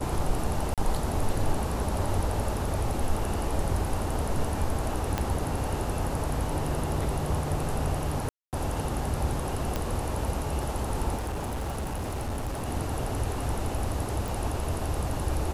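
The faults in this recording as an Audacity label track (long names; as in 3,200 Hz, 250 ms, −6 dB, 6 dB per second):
0.740000	0.780000	drop-out 37 ms
5.180000	5.180000	click −12 dBFS
8.290000	8.530000	drop-out 238 ms
9.760000	9.760000	click −14 dBFS
11.150000	12.690000	clipping −28 dBFS
14.280000	14.280000	click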